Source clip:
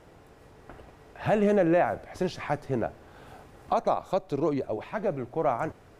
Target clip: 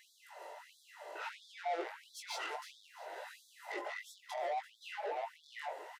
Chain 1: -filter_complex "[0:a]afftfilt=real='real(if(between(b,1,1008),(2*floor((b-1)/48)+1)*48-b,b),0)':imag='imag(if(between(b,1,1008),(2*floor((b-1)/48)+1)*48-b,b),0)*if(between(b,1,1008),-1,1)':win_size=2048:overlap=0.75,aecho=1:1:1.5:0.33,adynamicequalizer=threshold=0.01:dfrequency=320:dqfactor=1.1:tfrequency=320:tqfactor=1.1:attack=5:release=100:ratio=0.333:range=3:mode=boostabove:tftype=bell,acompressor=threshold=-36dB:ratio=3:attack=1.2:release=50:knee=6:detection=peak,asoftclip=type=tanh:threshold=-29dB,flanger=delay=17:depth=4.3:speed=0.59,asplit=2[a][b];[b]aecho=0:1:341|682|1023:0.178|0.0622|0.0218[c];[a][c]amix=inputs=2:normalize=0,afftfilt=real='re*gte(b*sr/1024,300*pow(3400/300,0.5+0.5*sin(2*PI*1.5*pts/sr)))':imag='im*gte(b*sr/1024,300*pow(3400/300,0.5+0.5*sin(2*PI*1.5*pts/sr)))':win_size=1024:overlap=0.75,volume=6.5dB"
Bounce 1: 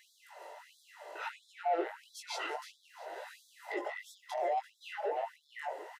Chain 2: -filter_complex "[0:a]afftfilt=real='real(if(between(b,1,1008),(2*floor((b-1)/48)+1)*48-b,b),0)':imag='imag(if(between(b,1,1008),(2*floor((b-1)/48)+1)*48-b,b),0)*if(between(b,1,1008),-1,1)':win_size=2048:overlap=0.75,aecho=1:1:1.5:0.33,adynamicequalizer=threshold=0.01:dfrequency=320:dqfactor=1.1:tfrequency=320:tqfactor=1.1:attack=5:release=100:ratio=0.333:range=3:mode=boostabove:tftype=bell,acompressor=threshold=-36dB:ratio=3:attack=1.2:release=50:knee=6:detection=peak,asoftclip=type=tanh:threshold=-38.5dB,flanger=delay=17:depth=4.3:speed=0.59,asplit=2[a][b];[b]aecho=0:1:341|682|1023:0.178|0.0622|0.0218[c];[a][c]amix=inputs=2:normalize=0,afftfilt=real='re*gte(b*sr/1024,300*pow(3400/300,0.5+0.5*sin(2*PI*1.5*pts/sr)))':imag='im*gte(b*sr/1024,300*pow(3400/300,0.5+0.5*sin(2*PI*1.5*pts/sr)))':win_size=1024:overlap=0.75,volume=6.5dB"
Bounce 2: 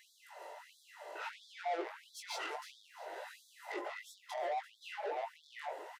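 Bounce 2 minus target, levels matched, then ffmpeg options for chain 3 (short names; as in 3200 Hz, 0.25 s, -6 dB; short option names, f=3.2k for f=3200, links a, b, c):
250 Hz band +2.5 dB
-filter_complex "[0:a]afftfilt=real='real(if(between(b,1,1008),(2*floor((b-1)/48)+1)*48-b,b),0)':imag='imag(if(between(b,1,1008),(2*floor((b-1)/48)+1)*48-b,b),0)*if(between(b,1,1008),-1,1)':win_size=2048:overlap=0.75,aecho=1:1:1.5:0.33,acompressor=threshold=-36dB:ratio=3:attack=1.2:release=50:knee=6:detection=peak,asoftclip=type=tanh:threshold=-38.5dB,flanger=delay=17:depth=4.3:speed=0.59,asplit=2[a][b];[b]aecho=0:1:341|682|1023:0.178|0.0622|0.0218[c];[a][c]amix=inputs=2:normalize=0,afftfilt=real='re*gte(b*sr/1024,300*pow(3400/300,0.5+0.5*sin(2*PI*1.5*pts/sr)))':imag='im*gte(b*sr/1024,300*pow(3400/300,0.5+0.5*sin(2*PI*1.5*pts/sr)))':win_size=1024:overlap=0.75,volume=6.5dB"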